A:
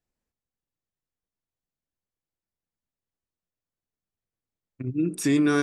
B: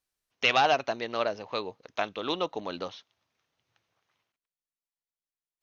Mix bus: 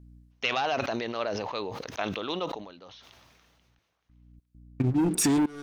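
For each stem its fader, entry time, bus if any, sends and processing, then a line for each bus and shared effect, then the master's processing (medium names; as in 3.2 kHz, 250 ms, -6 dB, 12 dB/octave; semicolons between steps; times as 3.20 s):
+2.5 dB, 0.00 s, no send, waveshaping leveller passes 3; hum 60 Hz, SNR 28 dB; trance gate "xxx..xx.xxx" 99 bpm -24 dB; auto duck -17 dB, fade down 0.25 s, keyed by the second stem
2.44 s -3 dB -> 2.75 s -15.5 dB, 0.00 s, no send, decay stretcher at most 28 dB/s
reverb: none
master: compression 5:1, threshold -23 dBFS, peak gain reduction 9.5 dB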